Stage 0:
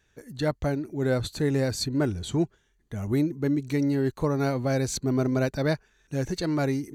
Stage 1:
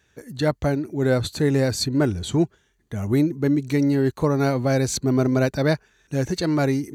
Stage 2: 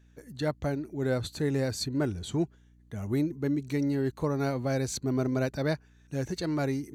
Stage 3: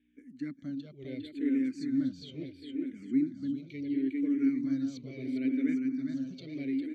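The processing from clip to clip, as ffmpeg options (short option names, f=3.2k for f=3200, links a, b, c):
-af "highpass=56,volume=5dB"
-af "aeval=exprs='val(0)+0.00355*(sin(2*PI*60*n/s)+sin(2*PI*2*60*n/s)/2+sin(2*PI*3*60*n/s)/3+sin(2*PI*4*60*n/s)/4+sin(2*PI*5*60*n/s)/5)':c=same,volume=-8.5dB"
-filter_complex "[0:a]asplit=3[a][b][c];[a]bandpass=f=270:t=q:w=8,volume=0dB[d];[b]bandpass=f=2.29k:t=q:w=8,volume=-6dB[e];[c]bandpass=f=3.01k:t=q:w=8,volume=-9dB[f];[d][e][f]amix=inputs=3:normalize=0,aecho=1:1:404|808|1212|1616|2020|2424|2828|3232:0.631|0.366|0.212|0.123|0.0714|0.0414|0.024|0.0139,asplit=2[g][h];[h]afreqshift=-0.73[i];[g][i]amix=inputs=2:normalize=1,volume=6dB"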